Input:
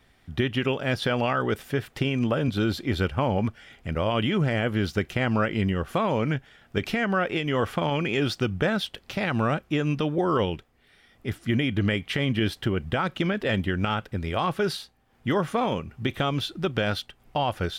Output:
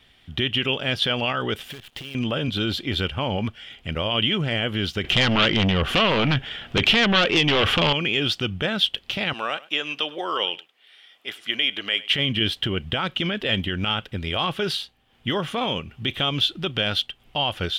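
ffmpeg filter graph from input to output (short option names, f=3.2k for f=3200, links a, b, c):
-filter_complex "[0:a]asettb=1/sr,asplit=3[a][b][c];[a]atrim=end=1.704[d];[b]atrim=start=1.7:end=2.15,asetpts=PTS-STARTPTS,afade=t=in:d=0.004:c=qsin,afade=t=out:st=0.446:d=0.004:c=qsin,equalizer=f=760:t=o:w=0.33:g=2.5,acompressor=threshold=-37dB:ratio=8:attack=3.2:release=140:knee=1:detection=peak,acrusher=bits=8:dc=4:mix=0:aa=0.000001[e];[c]atrim=start=2.146[f];[d][e]acrossfade=d=0.004:c1=hsin:c2=qsin[g];[g][f]acrossfade=d=0.004:c1=qsin:c2=hsin,asettb=1/sr,asplit=3[h][i][j];[h]atrim=end=5.044[k];[i]atrim=start=5.04:end=7.93,asetpts=PTS-STARTPTS,afade=t=in:d=0.004:c=qsin,afade=t=out:st=2.886:d=0.004:c=qsin,highshelf=f=5.9k:g=-10.5,aeval=exprs='0.266*sin(PI/2*3.16*val(0)/0.266)':c=same[l];[j]atrim=start=7.926[m];[k][l]acrossfade=d=0.004:c1=hsin:c2=qsin[n];[n][m]acrossfade=d=0.004:c1=qsin:c2=hsin,asettb=1/sr,asplit=3[o][p][q];[o]atrim=end=9.334[r];[p]atrim=start=9.33:end=12.1,asetpts=PTS-STARTPTS,afade=t=in:d=0.004:c=qsin,afade=t=out:st=2.766:d=0.004:c=qsin,highpass=570,aecho=1:1:102:0.0891,atrim=end_sample=122157[s];[q]atrim=start=12.096[t];[r][s]acrossfade=d=0.004:c1=hsin:c2=qsin[u];[u][t]acrossfade=d=0.004:c1=qsin:c2=hsin,alimiter=limit=-17dB:level=0:latency=1:release=33,equalizer=f=3.1k:w=1.9:g=14"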